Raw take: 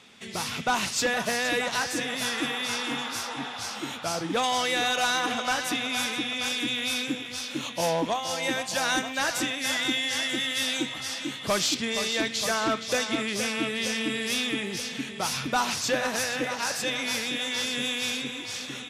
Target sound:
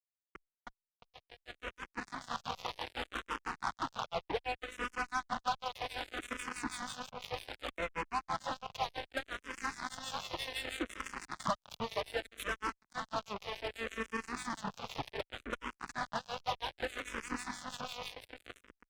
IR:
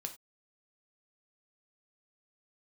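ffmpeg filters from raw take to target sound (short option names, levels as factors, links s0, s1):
-filter_complex "[0:a]lowpass=2900,aecho=1:1:979:0.0841,aresample=16000,asoftclip=type=tanh:threshold=0.0335,aresample=44100,equalizer=f=1100:w=1:g=13,acompressor=threshold=0.0141:ratio=16,acrossover=split=1800[s0][s1];[s0]aeval=exprs='val(0)*(1-1/2+1/2*cos(2*PI*6*n/s))':c=same[s2];[s1]aeval=exprs='val(0)*(1-1/2-1/2*cos(2*PI*6*n/s))':c=same[s3];[s2][s3]amix=inputs=2:normalize=0,dynaudnorm=f=180:g=17:m=2.99,afftfilt=real='re*gte(hypot(re,im),0.02)':imag='im*gte(hypot(re,im),0.02)':win_size=1024:overlap=0.75,aeval=exprs='val(0)+0.00316*(sin(2*PI*50*n/s)+sin(2*PI*2*50*n/s)/2+sin(2*PI*3*50*n/s)/3+sin(2*PI*4*50*n/s)/4+sin(2*PI*5*50*n/s)/5)':c=same,acrusher=bits=4:mix=0:aa=0.5,asplit=2[s4][s5];[s5]afreqshift=-0.65[s6];[s4][s6]amix=inputs=2:normalize=1,volume=1.12"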